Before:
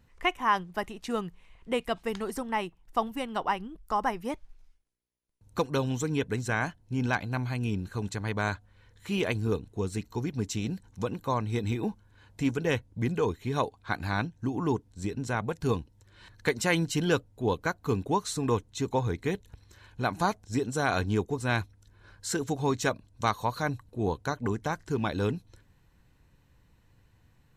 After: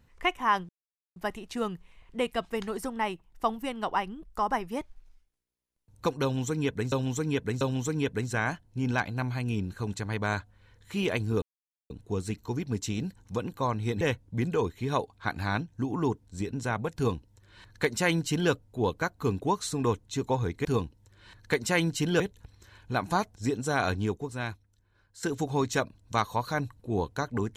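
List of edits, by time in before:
0:00.69: splice in silence 0.47 s
0:05.76–0:06.45: repeat, 3 plays
0:09.57: splice in silence 0.48 s
0:11.68–0:12.65: remove
0:15.60–0:17.15: duplicate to 0:19.29
0:20.96–0:22.32: fade out quadratic, to −13.5 dB

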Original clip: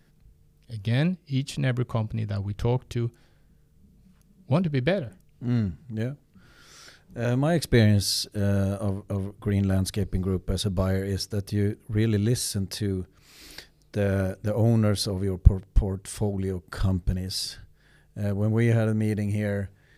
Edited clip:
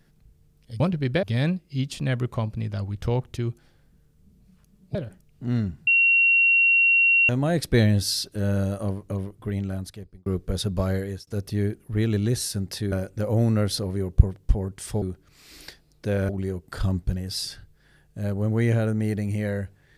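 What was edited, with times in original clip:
0:04.52–0:04.95: move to 0:00.80
0:05.87–0:07.29: beep over 2,740 Hz −15 dBFS
0:09.15–0:10.26: fade out
0:11.02–0:11.27: fade out
0:12.92–0:14.19: move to 0:16.29

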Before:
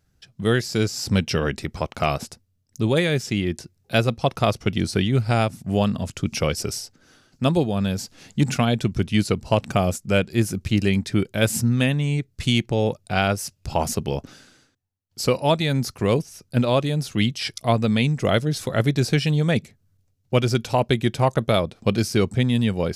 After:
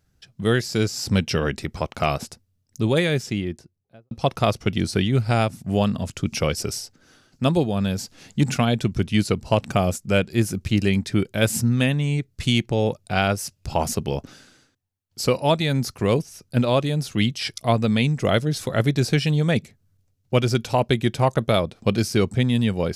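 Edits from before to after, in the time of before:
0:03.06–0:04.11: fade out and dull

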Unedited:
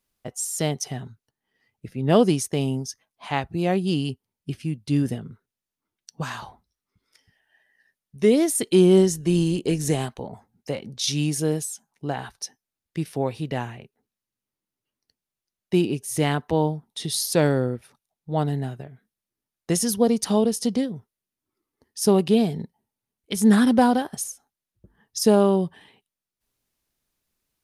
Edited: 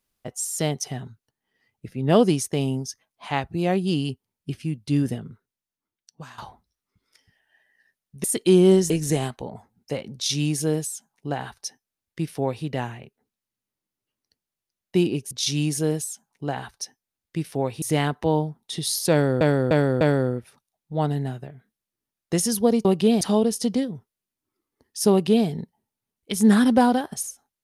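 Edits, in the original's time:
0:05.20–0:06.38: fade out linear, to −14.5 dB
0:08.24–0:08.50: remove
0:09.16–0:09.68: remove
0:10.92–0:13.43: duplicate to 0:16.09
0:17.38–0:17.68: repeat, 4 plays
0:22.12–0:22.48: duplicate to 0:20.22

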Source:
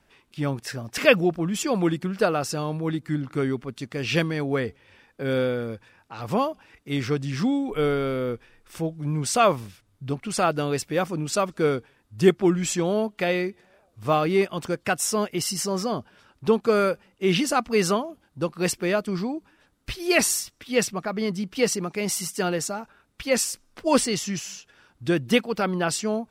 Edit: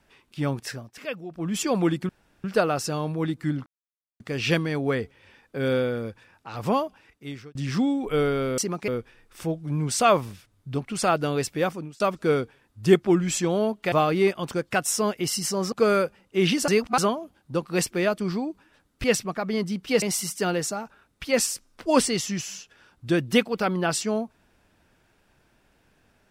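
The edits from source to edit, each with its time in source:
0:00.67–0:01.54: duck −16 dB, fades 0.25 s
0:02.09: splice in room tone 0.35 s
0:03.31–0:03.85: silence
0:06.46–0:07.20: fade out
0:10.97–0:11.35: fade out
0:13.27–0:14.06: remove
0:15.86–0:16.59: remove
0:17.55–0:17.85: reverse
0:19.91–0:20.72: remove
0:21.70–0:22.00: move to 0:08.23

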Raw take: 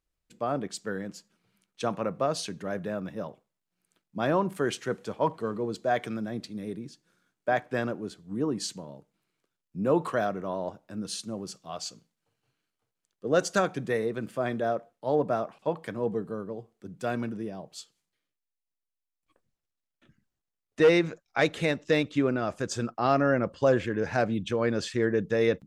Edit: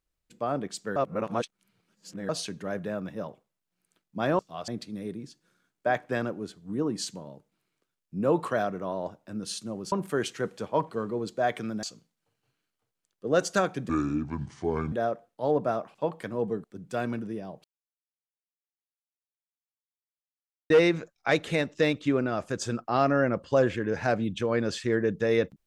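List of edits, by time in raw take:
0:00.96–0:02.29: reverse
0:04.39–0:06.30: swap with 0:11.54–0:11.83
0:13.89–0:14.56: play speed 65%
0:16.28–0:16.74: remove
0:17.74–0:20.80: silence

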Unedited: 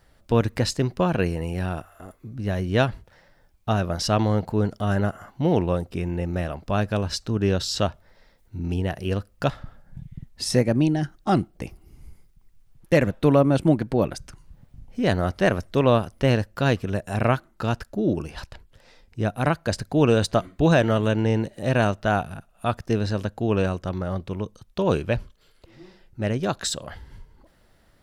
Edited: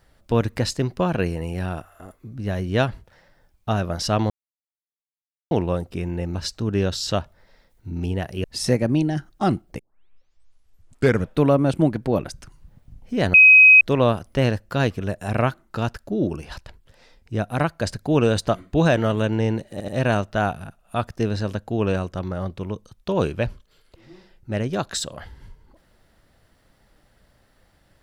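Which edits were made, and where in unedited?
0:04.30–0:05.51: silence
0:06.35–0:07.03: remove
0:09.12–0:10.30: remove
0:11.65: tape start 1.56 s
0:15.20–0:15.67: beep over 2,530 Hz −6.5 dBFS
0:21.58: stutter 0.08 s, 3 plays

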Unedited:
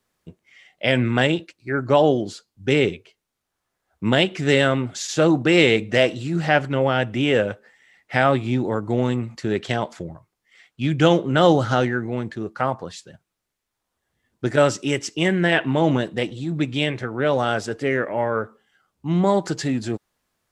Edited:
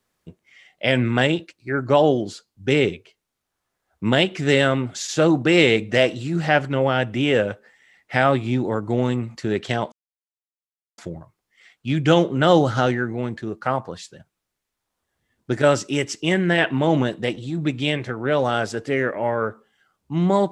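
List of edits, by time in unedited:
0:09.92: splice in silence 1.06 s

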